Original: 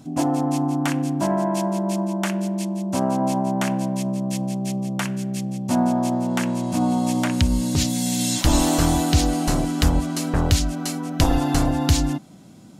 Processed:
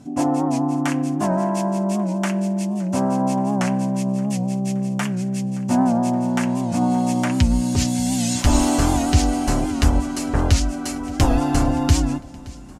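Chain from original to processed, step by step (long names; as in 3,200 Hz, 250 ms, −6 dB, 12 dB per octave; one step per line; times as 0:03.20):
low-pass filter 9,800 Hz 12 dB per octave
parametric band 3,800 Hz −6 dB 0.56 octaves
notch comb filter 160 Hz
on a send: repeating echo 571 ms, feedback 56%, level −21 dB
on the sum: wow of a warped record 78 rpm, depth 100 cents
level +2.5 dB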